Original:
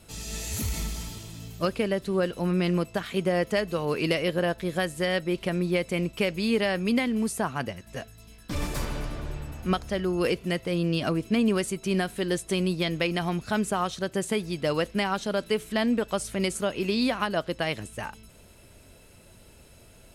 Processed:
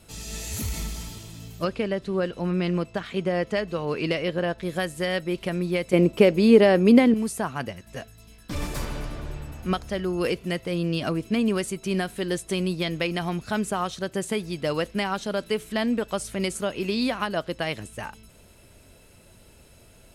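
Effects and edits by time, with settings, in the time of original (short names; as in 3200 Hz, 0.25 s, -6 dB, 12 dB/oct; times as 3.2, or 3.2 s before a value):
1.64–4.63 air absorption 63 m
5.93–7.14 bell 380 Hz +12 dB 2.7 oct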